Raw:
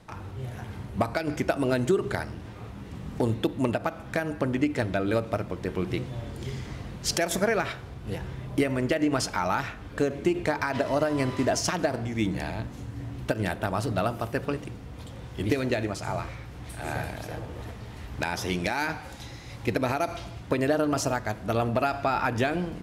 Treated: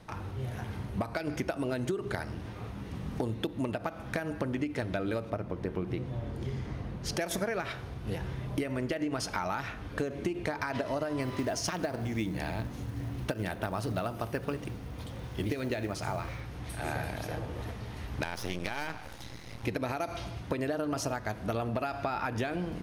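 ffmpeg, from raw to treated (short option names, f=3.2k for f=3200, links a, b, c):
-filter_complex "[0:a]asettb=1/sr,asplit=3[a][b][c];[a]atrim=end=5.304[d];[b]atrim=start=5.3:end=7.19,asetpts=PTS-STARTPTS,afade=t=in:d=0.004:c=qsin,afade=t=out:st=1.886:d=0.004:c=qsin,highshelf=f=2.1k:g=-10[e];[c]atrim=start=7.186[f];[d][e]acrossfade=d=0.004:c1=hsin:c2=qsin[g];[g][f]acrossfade=d=0.004:c1=qsin:c2=hsin,asettb=1/sr,asplit=3[h][i][j];[h]atrim=end=11.214[k];[i]atrim=start=11.21:end=16.41,asetpts=PTS-STARTPTS,afade=t=in:d=0.004:c=qsin,afade=t=out:st=5.196:d=0.004:c=qsin,acrusher=bits=7:mode=log:mix=0:aa=0.000001[l];[j]atrim=start=16.406[m];[k][l]acrossfade=d=0.004:c1=hsin:c2=qsin[n];[n][m]acrossfade=d=0.004:c1=qsin:c2=hsin,asettb=1/sr,asplit=3[o][p][q];[o]atrim=end=18.244[r];[p]atrim=start=18.24:end=19.64,asetpts=PTS-STARTPTS,afade=t=in:d=0.004:c=qsin,afade=t=out:st=1.396:d=0.004:c=qsin,aeval=exprs='max(val(0),0)':c=same[s];[q]atrim=start=19.636[t];[r][s]acrossfade=d=0.004:c1=hsin:c2=qsin[u];[u][t]acrossfade=d=0.004:c1=qsin:c2=hsin,bandreject=f=7.5k:w=7.4,acompressor=threshold=-29dB:ratio=6"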